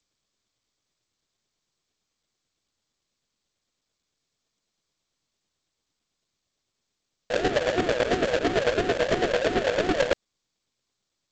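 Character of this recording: aliases and images of a low sample rate 1.1 kHz, jitter 20%; chopped level 9 Hz, depth 60%, duty 30%; G.722

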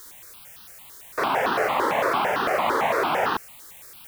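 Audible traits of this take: a quantiser's noise floor 8-bit, dither triangular; notches that jump at a steady rate 8.9 Hz 690–2200 Hz

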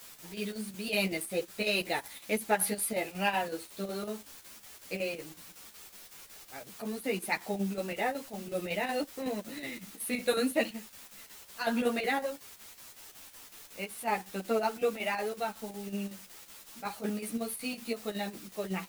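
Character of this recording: a quantiser's noise floor 8-bit, dither triangular; chopped level 5.4 Hz, depth 60%, duty 75%; a shimmering, thickened sound

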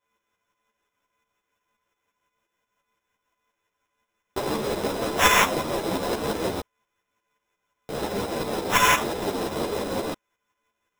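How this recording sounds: a buzz of ramps at a fixed pitch in blocks of 8 samples; tremolo saw up 5.7 Hz, depth 60%; aliases and images of a low sample rate 4.5 kHz, jitter 0%; a shimmering, thickened sound

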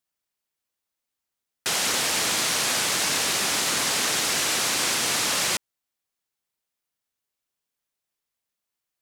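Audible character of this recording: noise floor -85 dBFS; spectral tilt -1.0 dB/octave

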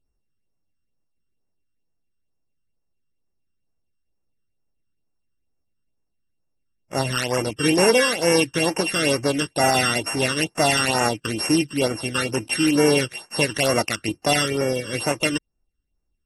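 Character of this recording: a buzz of ramps at a fixed pitch in blocks of 16 samples; phasing stages 12, 2.2 Hz, lowest notch 700–3900 Hz; AAC

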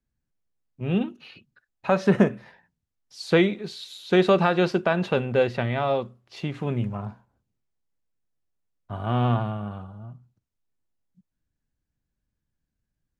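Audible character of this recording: noise floor -83 dBFS; spectral tilt -5.5 dB/octave

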